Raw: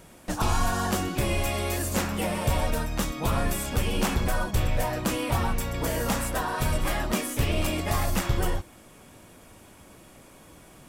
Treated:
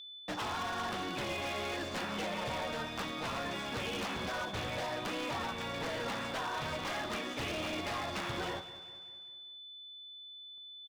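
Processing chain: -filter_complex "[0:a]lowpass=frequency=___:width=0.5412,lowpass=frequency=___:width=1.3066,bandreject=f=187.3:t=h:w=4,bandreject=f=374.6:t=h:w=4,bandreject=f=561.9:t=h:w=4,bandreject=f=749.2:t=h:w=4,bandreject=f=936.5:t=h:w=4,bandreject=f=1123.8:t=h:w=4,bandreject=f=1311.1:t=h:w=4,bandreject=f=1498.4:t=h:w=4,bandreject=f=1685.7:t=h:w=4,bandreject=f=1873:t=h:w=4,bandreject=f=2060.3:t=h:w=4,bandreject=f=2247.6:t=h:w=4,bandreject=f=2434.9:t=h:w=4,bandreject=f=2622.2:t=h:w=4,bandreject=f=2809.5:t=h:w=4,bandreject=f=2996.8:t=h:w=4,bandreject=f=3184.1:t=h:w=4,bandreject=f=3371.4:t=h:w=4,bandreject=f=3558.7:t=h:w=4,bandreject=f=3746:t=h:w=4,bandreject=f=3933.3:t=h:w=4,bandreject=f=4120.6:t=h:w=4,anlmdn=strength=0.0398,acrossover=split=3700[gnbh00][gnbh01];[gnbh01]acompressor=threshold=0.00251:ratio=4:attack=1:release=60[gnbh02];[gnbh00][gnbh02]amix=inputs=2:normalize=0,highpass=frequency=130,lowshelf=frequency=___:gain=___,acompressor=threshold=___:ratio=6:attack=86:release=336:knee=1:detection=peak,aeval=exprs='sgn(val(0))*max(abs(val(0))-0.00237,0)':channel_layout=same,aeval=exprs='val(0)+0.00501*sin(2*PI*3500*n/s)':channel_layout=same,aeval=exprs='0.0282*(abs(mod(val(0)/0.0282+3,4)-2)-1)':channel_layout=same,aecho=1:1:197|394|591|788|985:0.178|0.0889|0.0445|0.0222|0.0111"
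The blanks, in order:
5400, 5400, 380, -8, 0.02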